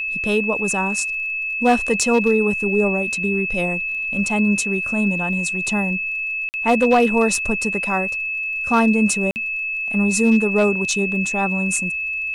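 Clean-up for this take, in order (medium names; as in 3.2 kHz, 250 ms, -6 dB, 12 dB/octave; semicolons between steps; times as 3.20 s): clip repair -8.5 dBFS; de-click; band-stop 2.6 kHz, Q 30; interpolate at 6.49/9.31 s, 49 ms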